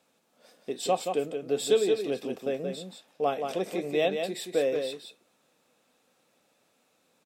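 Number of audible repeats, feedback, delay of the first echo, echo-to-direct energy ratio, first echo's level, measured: 1, no regular repeats, 176 ms, -6.0 dB, -6.0 dB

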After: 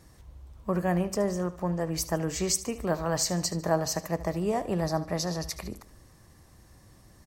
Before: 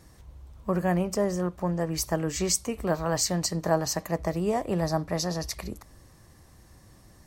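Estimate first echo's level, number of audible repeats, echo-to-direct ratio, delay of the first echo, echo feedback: -16.0 dB, 3, -15.0 dB, 74 ms, 43%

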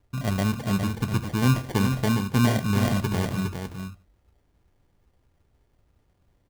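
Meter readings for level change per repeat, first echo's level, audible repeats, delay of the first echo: no regular repeats, -6.5 dB, 1, 409 ms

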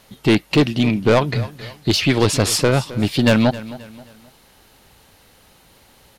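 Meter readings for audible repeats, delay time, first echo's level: 3, 265 ms, -17.0 dB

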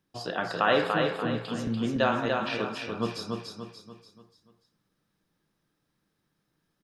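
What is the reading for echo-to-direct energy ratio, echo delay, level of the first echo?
-3.0 dB, 291 ms, -4.0 dB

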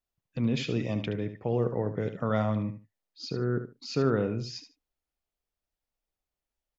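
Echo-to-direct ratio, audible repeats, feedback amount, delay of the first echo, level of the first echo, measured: -10.5 dB, 2, 18%, 74 ms, -10.5 dB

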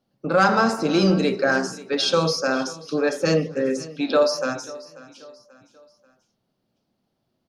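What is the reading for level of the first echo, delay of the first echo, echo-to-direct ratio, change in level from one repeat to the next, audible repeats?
-19.0 dB, 537 ms, -18.0 dB, -7.5 dB, 3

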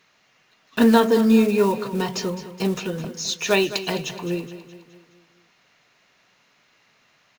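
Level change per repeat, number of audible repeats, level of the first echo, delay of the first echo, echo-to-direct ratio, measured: -6.0 dB, 4, -13.5 dB, 210 ms, -12.0 dB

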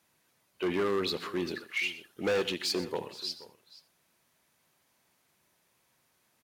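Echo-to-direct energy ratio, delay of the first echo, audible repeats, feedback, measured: -13.5 dB, 83 ms, 3, no regular repeats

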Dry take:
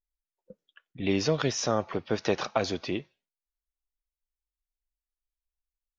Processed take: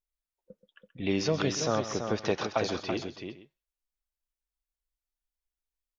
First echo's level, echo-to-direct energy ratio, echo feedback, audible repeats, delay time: -13.0 dB, -6.0 dB, no regular repeats, 3, 129 ms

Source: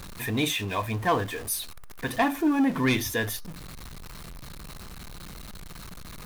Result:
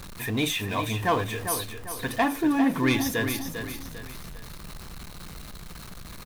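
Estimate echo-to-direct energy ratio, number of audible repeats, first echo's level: -7.5 dB, 3, -8.0 dB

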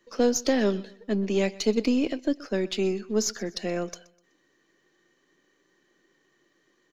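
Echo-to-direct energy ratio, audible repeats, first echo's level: -20.5 dB, 2, -21.0 dB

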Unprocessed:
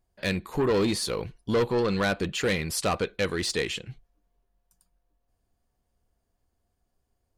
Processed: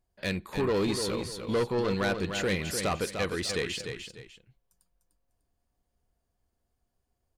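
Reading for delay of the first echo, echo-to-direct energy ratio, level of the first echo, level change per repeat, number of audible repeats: 299 ms, -6.5 dB, -7.0 dB, -10.5 dB, 2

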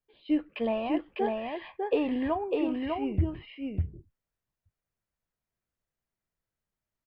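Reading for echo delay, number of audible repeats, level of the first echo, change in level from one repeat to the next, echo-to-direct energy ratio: 601 ms, 1, -3.0 dB, no regular repeats, -3.0 dB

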